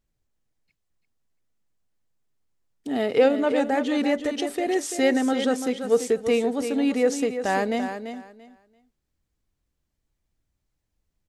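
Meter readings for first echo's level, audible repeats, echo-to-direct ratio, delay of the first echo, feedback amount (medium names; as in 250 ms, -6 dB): -9.0 dB, 2, -9.0 dB, 339 ms, 20%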